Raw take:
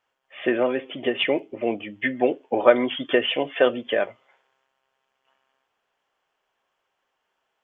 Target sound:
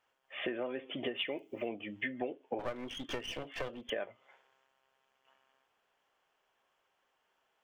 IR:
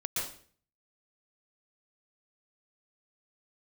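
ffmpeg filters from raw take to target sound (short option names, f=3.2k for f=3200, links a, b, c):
-filter_complex "[0:a]asettb=1/sr,asplit=3[a][b][c];[a]atrim=end=1.164[d];[b]atrim=start=1.16:end=1.69,asetpts=PTS-STARTPTS,afade=t=in:d=0.004:c=qsin,afade=t=out:st=0.526:d=0.004:c=qsin,aemphasis=mode=production:type=75fm[e];[c]atrim=start=1.686[f];[d][e]acrossfade=d=0.004:c1=hsin:c2=qsin[g];[g][f]acrossfade=d=0.004:c1=qsin:c2=hsin,acompressor=threshold=-34dB:ratio=5,asettb=1/sr,asplit=3[h][i][j];[h]atrim=end=2.594[k];[i]atrim=start=2.59:end=3.9,asetpts=PTS-STARTPTS,afade=t=in:d=0.004:c=qsin,afade=t=out:st=1.306:d=0.004:c=qsin,aeval=exprs='clip(val(0),-1,0.00708)':c=same[l];[j]atrim=start=3.896[m];[k][l]acrossfade=d=0.004:c1=hsin:c2=qsin[n];[n][m]acrossfade=d=0.004:c1=qsin:c2=hsin,volume=-1.5dB"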